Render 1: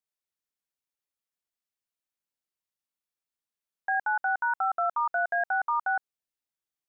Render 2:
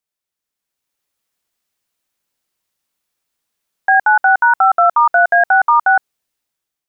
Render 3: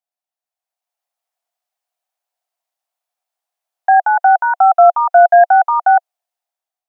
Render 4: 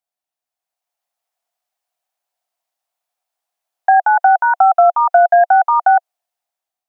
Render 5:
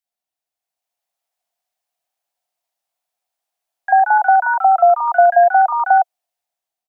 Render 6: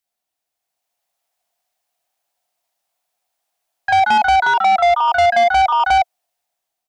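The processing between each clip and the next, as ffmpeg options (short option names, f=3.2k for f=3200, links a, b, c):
-af "dynaudnorm=f=320:g=5:m=9.5dB,volume=6.5dB"
-af "highpass=f=710:t=q:w=7.2,volume=-9.5dB"
-af "acompressor=threshold=-9dB:ratio=6,volume=2dB"
-filter_complex "[0:a]acrossover=split=1200[a][b];[a]adelay=40[c];[c][b]amix=inputs=2:normalize=0"
-af "asoftclip=type=tanh:threshold=-16.5dB,volume=6dB"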